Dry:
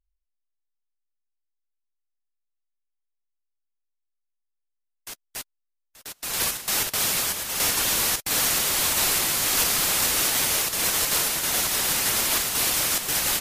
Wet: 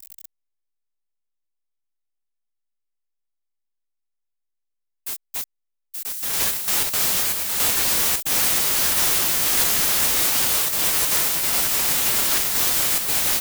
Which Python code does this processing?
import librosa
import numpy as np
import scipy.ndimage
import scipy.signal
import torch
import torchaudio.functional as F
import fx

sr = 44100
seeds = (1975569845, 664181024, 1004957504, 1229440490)

y = x + 0.5 * 10.0 ** (-28.0 / 20.0) * np.diff(np.sign(x), prepend=np.sign(x[:1]))
y = fx.formant_shift(y, sr, semitones=6)
y = F.gain(torch.from_numpy(y), 2.0).numpy()